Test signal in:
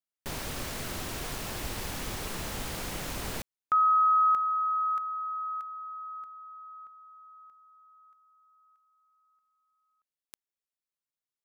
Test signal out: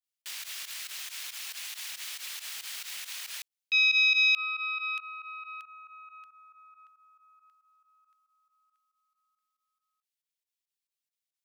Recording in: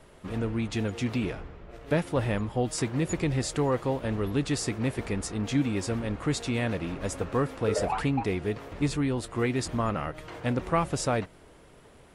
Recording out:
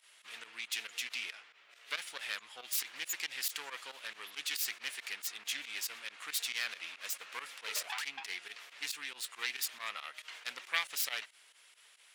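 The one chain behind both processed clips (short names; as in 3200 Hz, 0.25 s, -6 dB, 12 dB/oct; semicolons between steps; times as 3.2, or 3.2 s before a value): self-modulated delay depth 0.22 ms; Chebyshev high-pass 2700 Hz, order 2; pump 138 bpm, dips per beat 2, -16 dB, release 71 ms; gain +4 dB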